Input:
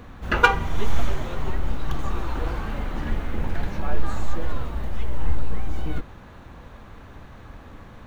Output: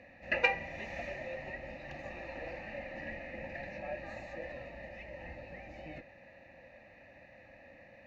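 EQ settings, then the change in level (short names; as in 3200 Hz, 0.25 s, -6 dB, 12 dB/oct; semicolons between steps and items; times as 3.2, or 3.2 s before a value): vowel filter e; fixed phaser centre 2200 Hz, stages 8; +10.0 dB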